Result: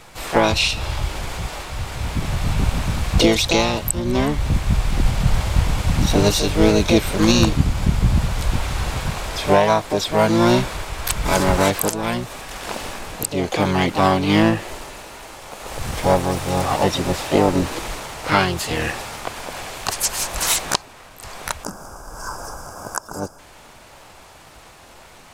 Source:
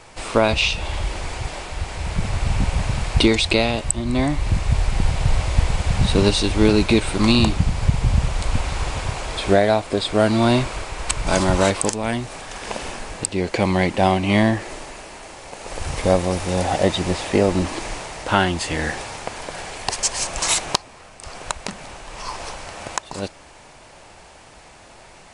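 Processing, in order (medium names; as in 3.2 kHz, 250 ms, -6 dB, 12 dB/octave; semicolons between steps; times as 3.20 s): harmony voices +7 st -3 dB; time-frequency box 21.64–23.39 s, 1.7–4.7 kHz -20 dB; trim -1 dB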